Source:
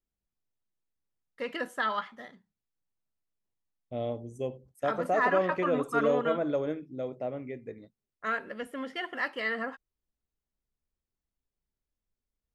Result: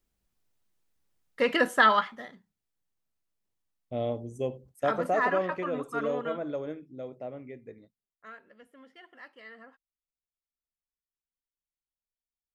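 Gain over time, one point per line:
1.85 s +10 dB
2.26 s +2.5 dB
4.92 s +2.5 dB
5.69 s -4.5 dB
7.79 s -4.5 dB
8.36 s -17 dB

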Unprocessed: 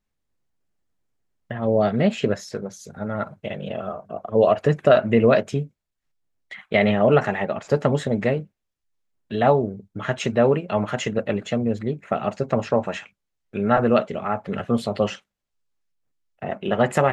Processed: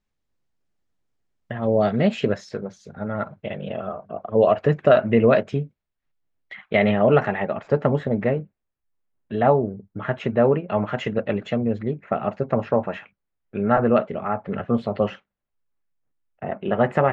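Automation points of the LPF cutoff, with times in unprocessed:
1.9 s 7000 Hz
2.8 s 3300 Hz
7.18 s 3300 Hz
7.98 s 2000 Hz
10.52 s 2000 Hz
11.37 s 3600 Hz
12.2 s 2100 Hz

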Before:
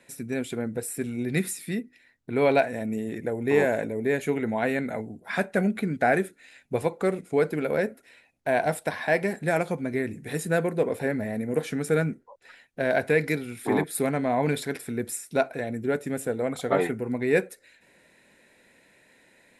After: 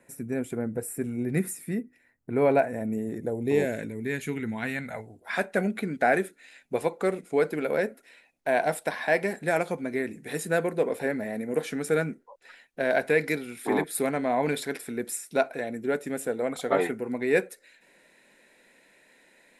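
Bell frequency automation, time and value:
bell -14.5 dB 1.3 oct
2.99 s 3800 Hz
3.92 s 620 Hz
4.6 s 620 Hz
5.52 s 92 Hz

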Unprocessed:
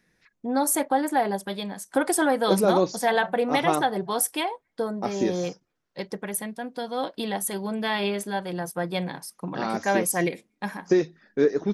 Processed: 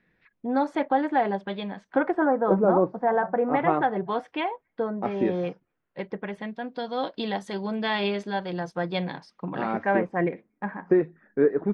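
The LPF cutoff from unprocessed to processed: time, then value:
LPF 24 dB/oct
1.86 s 3200 Hz
2.29 s 1400 Hz
3.21 s 1400 Hz
4.08 s 2800 Hz
6.08 s 2800 Hz
6.9 s 4800 Hz
9.11 s 4800 Hz
10.06 s 1900 Hz

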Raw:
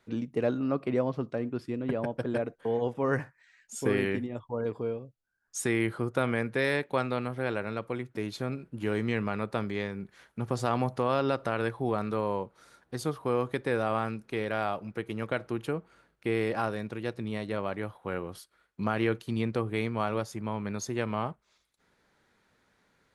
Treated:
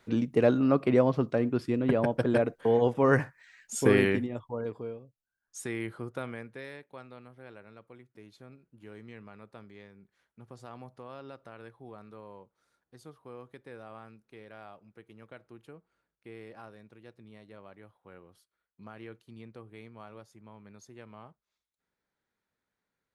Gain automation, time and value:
3.98 s +5 dB
5 s -7.5 dB
6.1 s -7.5 dB
6.8 s -18 dB

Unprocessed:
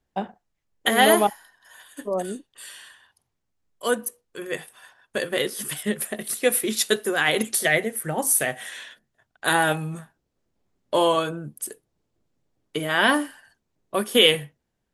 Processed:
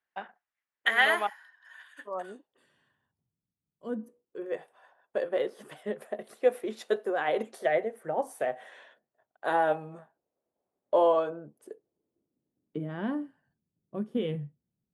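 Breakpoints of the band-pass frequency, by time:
band-pass, Q 1.7
2.03 s 1700 Hz
2.49 s 660 Hz
2.68 s 160 Hz
3.88 s 160 Hz
4.55 s 620 Hz
11.34 s 620 Hz
13.15 s 160 Hz

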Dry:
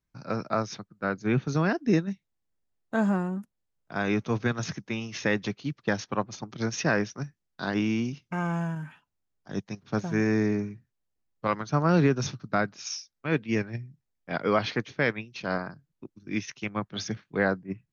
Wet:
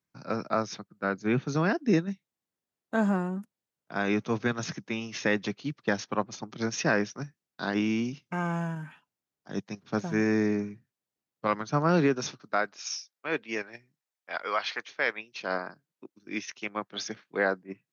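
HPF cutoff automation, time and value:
11.81 s 150 Hz
12.56 s 430 Hz
13.38 s 430 Hz
14.69 s 940 Hz
15.51 s 320 Hz

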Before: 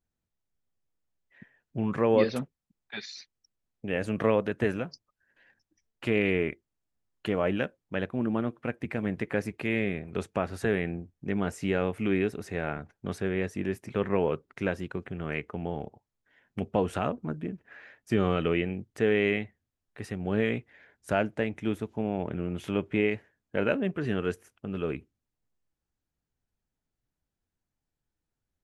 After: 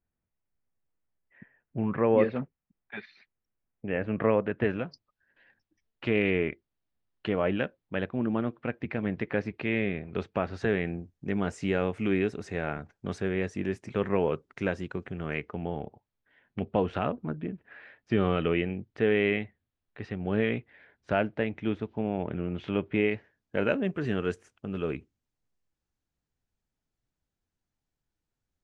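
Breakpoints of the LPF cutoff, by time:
LPF 24 dB/oct
4.42 s 2500 Hz
4.88 s 4500 Hz
10.41 s 4500 Hz
10.86 s 7700 Hz
15.22 s 7700 Hz
15.69 s 4200 Hz
22.98 s 4200 Hz
23.59 s 8000 Hz

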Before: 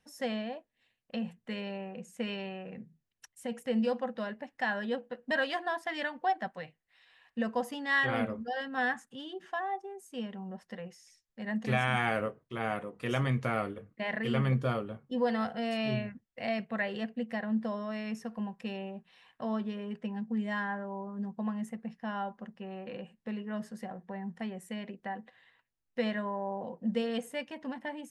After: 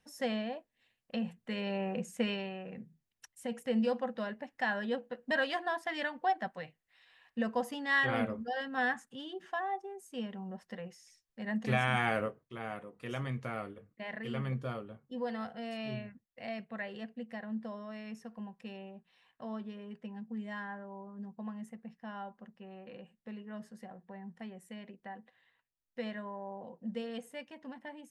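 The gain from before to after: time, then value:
1.52 s 0 dB
1.95 s +7.5 dB
2.49 s -1 dB
12.22 s -1 dB
12.63 s -7.5 dB

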